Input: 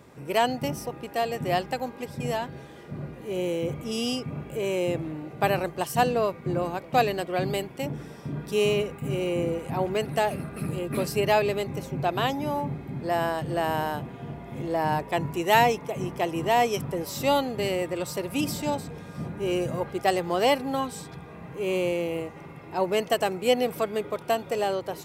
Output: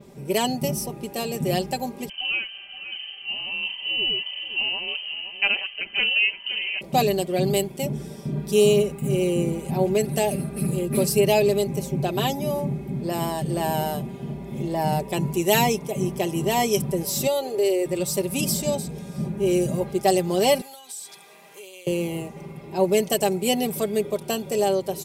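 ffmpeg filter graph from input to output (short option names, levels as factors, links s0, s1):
-filter_complex "[0:a]asettb=1/sr,asplit=3[s0][s1][s2];[s0]atrim=end=2.094[s3];[s1]atrim=start=2.09:end=6.81,asetpts=PTS-STARTPTS,afade=t=in:d=0.004:c=qsin,afade=t=out:st=4.716:d=0.004:c=qsin,aecho=1:1:521:0.266,atrim=end_sample=208152,lowpass=f=2700:t=q:w=0.5098,lowpass=f=2700:t=q:w=0.6013,lowpass=f=2700:t=q:w=0.9,lowpass=f=2700:t=q:w=2.563,afreqshift=-3200[s4];[s2]atrim=start=6.806[s5];[s3][s4]acrossfade=d=0.004:c1=hsin:c2=qsin[s6];[s6][s5]acrossfade=d=0.004:c1=qsin:c2=hsin,asettb=1/sr,asplit=3[s7][s8][s9];[s7]atrim=end=17.274[s10];[s8]atrim=start=17.27:end=17.86,asetpts=PTS-STARTPTS,afade=t=in:d=0.004:c=qsin,afade=t=out:st=0.586:d=0.004:c=qsin,lowshelf=f=270:t=q:w=3:g=-11.5,acompressor=threshold=0.0398:ratio=2:attack=3.2:release=140:knee=1:detection=peak[s11];[s9]atrim=start=17.856[s12];[s10][s11]acrossfade=d=0.004:c1=hsin:c2=qsin[s13];[s13][s12]acrossfade=d=0.004:c1=qsin:c2=hsin,asettb=1/sr,asplit=3[s14][s15][s16];[s14]atrim=end=20.614[s17];[s15]atrim=start=20.61:end=21.87,asetpts=PTS-STARTPTS,afade=t=in:d=0.004:c=qsin,afade=t=out:st=1.256:d=0.004:c=qsin,highpass=560,tiltshelf=f=1400:g=-7,acompressor=threshold=0.00794:ratio=16:attack=3.2:release=140:knee=1:detection=peak[s18];[s16]atrim=start=21.866[s19];[s17][s18]acrossfade=d=0.004:c1=hsin:c2=qsin[s20];[s20][s19]acrossfade=d=0.004:c1=qsin:c2=hsin,equalizer=f=1400:t=o:w=1.5:g=-12.5,aecho=1:1:5.1:0.65,adynamicequalizer=threshold=0.00224:dfrequency=9800:dqfactor=0.79:tfrequency=9800:tqfactor=0.79:attack=5:release=100:ratio=0.375:range=3.5:mode=boostabove:tftype=bell,volume=1.68"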